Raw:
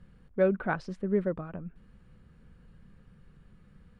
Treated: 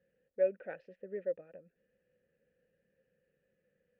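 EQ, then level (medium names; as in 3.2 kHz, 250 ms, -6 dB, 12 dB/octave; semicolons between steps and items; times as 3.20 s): treble shelf 4.6 kHz -10.5 dB; dynamic bell 2.5 kHz, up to +5 dB, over -57 dBFS, Q 2.3; vowel filter e; 0.0 dB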